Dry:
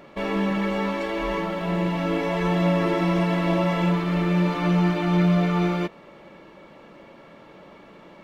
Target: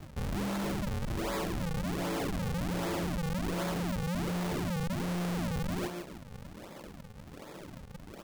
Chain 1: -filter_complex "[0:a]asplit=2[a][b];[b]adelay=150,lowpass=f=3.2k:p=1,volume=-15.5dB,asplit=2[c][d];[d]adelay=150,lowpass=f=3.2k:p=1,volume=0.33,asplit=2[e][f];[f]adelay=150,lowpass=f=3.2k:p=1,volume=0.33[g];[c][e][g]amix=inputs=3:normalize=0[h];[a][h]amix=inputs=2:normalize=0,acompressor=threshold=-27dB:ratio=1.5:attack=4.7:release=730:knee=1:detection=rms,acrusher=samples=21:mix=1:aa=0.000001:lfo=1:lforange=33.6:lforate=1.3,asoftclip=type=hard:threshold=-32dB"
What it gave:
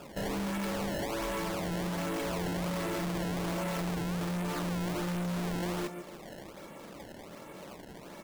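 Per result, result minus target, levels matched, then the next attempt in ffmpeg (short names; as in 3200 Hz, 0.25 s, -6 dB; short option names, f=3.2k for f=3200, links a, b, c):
decimation with a swept rate: distortion -11 dB; compressor: peak gain reduction +4.5 dB
-filter_complex "[0:a]asplit=2[a][b];[b]adelay=150,lowpass=f=3.2k:p=1,volume=-15.5dB,asplit=2[c][d];[d]adelay=150,lowpass=f=3.2k:p=1,volume=0.33,asplit=2[e][f];[f]adelay=150,lowpass=f=3.2k:p=1,volume=0.33[g];[c][e][g]amix=inputs=3:normalize=0[h];[a][h]amix=inputs=2:normalize=0,acompressor=threshold=-27dB:ratio=1.5:attack=4.7:release=730:knee=1:detection=rms,acrusher=samples=76:mix=1:aa=0.000001:lfo=1:lforange=122:lforate=1.3,asoftclip=type=hard:threshold=-32dB"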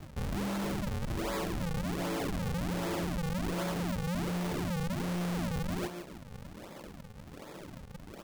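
compressor: peak gain reduction +4.5 dB
-filter_complex "[0:a]asplit=2[a][b];[b]adelay=150,lowpass=f=3.2k:p=1,volume=-15.5dB,asplit=2[c][d];[d]adelay=150,lowpass=f=3.2k:p=1,volume=0.33,asplit=2[e][f];[f]adelay=150,lowpass=f=3.2k:p=1,volume=0.33[g];[c][e][g]amix=inputs=3:normalize=0[h];[a][h]amix=inputs=2:normalize=0,acrusher=samples=76:mix=1:aa=0.000001:lfo=1:lforange=122:lforate=1.3,asoftclip=type=hard:threshold=-32dB"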